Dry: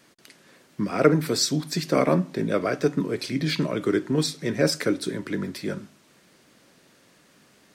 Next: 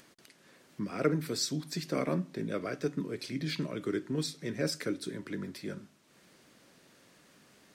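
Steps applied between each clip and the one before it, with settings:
dynamic equaliser 800 Hz, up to −5 dB, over −36 dBFS, Q 1.1
upward compression, threshold −44 dBFS
level −9 dB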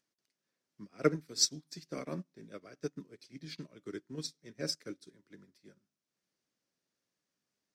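parametric band 5,600 Hz +8 dB 0.74 octaves
expander for the loud parts 2.5 to 1, over −43 dBFS
level +2 dB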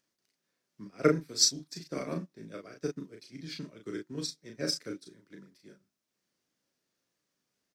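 double-tracking delay 36 ms −4 dB
level +3 dB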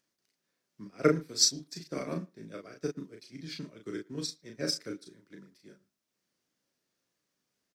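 far-end echo of a speakerphone 110 ms, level −25 dB

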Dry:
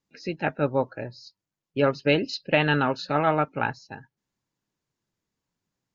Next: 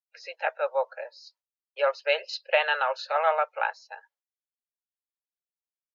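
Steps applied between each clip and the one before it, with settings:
downward expander −55 dBFS
Butterworth high-pass 500 Hz 72 dB per octave
high-shelf EQ 4,900 Hz −4.5 dB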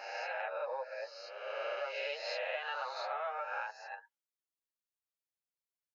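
peak hold with a rise ahead of every peak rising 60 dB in 1.45 s
downward compressor 5 to 1, threshold −29 dBFS, peak gain reduction 13 dB
barber-pole flanger 8.5 ms +1.8 Hz
level −4 dB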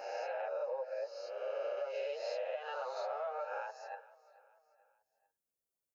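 graphic EQ with 10 bands 500 Hz +5 dB, 1,000 Hz −5 dB, 2,000 Hz −10 dB, 4,000 Hz −9 dB
downward compressor, threshold −39 dBFS, peak gain reduction 6.5 dB
repeating echo 439 ms, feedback 47%, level −20.5 dB
level +4 dB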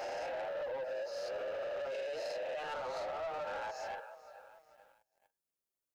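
brickwall limiter −37 dBFS, peak gain reduction 9 dB
leveller curve on the samples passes 2
on a send at −18 dB: convolution reverb, pre-delay 3 ms
on the sum: level +2 dB

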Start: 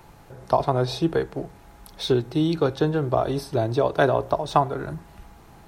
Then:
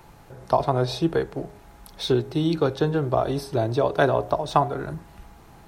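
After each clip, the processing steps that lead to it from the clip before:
hum removal 102.9 Hz, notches 7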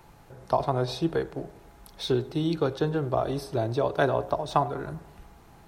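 feedback echo with a low-pass in the loop 98 ms, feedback 62%, low-pass 3,400 Hz, level −21 dB
level −4 dB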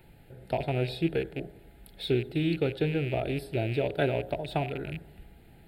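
loose part that buzzes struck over −34 dBFS, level −28 dBFS
phaser with its sweep stopped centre 2,600 Hz, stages 4

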